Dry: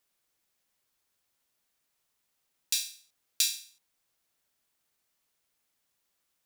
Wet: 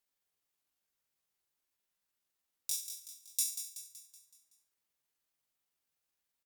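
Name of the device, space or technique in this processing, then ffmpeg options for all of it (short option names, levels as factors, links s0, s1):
chipmunk voice: -filter_complex "[0:a]equalizer=f=12000:w=1.6:g=3.5,asettb=1/sr,asplit=3[s0][s1][s2];[s0]atrim=end=2.864[s3];[s1]atrim=start=2.86:end=3.66,asetpts=PTS-STARTPTS,afade=t=in:d=0.004:c=qsin,afade=t=out:st=0.796:d=0.004:c=qsin,aecho=1:1:6.4:0.56,atrim=end_sample=35280[s4];[s2]atrim=start=3.656[s5];[s3][s4]acrossfade=d=0.004:c1=hsin:c2=qsin[s6];[s6][s5]acrossfade=d=0.004:c1=qsin:c2=hsin,asetrate=64194,aresample=44100,atempo=0.686977,aecho=1:1:188|376|564|752|940|1128:0.335|0.171|0.0871|0.0444|0.0227|0.0116,volume=0.447"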